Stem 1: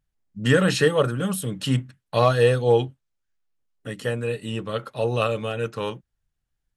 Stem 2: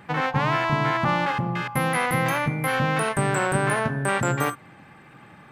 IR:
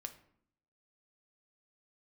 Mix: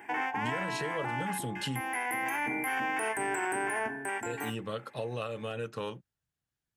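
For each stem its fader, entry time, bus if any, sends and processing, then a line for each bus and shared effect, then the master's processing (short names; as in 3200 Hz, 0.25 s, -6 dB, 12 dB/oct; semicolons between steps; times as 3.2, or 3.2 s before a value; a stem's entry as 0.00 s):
-3.5 dB, 0.00 s, muted 1.81–4.26, no send, compressor 10:1, threshold -28 dBFS, peak gain reduction 16 dB; HPF 100 Hz
+3.0 dB, 0.00 s, no send, Bessel high-pass 300 Hz, order 2; fixed phaser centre 820 Hz, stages 8; auto duck -11 dB, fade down 0.80 s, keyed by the first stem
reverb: off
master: limiter -23.5 dBFS, peak gain reduction 10 dB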